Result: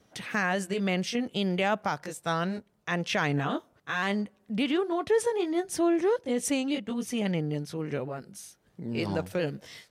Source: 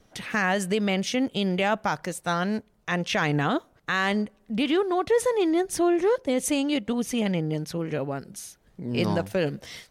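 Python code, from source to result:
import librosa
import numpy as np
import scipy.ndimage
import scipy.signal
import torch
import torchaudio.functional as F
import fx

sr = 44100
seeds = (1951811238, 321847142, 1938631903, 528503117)

y = fx.pitch_ramps(x, sr, semitones=-1.0, every_ms=1342)
y = scipy.signal.sosfilt(scipy.signal.butter(2, 81.0, 'highpass', fs=sr, output='sos'), y)
y = y * librosa.db_to_amplitude(-2.5)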